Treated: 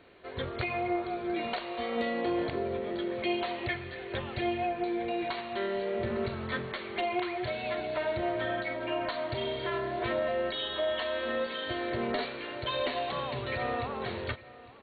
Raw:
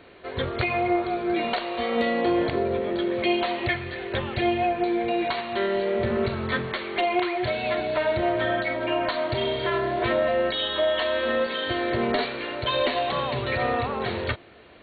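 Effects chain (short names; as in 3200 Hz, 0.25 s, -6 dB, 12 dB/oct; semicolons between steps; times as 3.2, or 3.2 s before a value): echo 0.855 s -19 dB; gain -7.5 dB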